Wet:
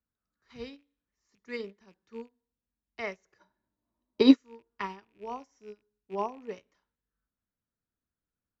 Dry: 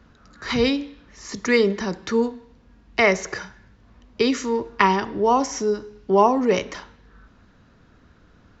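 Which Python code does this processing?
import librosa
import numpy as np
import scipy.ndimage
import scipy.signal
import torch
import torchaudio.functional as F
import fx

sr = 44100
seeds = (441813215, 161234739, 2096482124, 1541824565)

y = fx.rattle_buzz(x, sr, strikes_db=-37.0, level_db=-23.0)
y = fx.small_body(y, sr, hz=(320.0, 610.0, 910.0, 3900.0), ring_ms=25, db=fx.line((3.39, 17.0), (4.35, 15.0)), at=(3.39, 4.35), fade=0.02)
y = fx.upward_expand(y, sr, threshold_db=-29.0, expansion=2.5)
y = y * librosa.db_to_amplitude(-5.0)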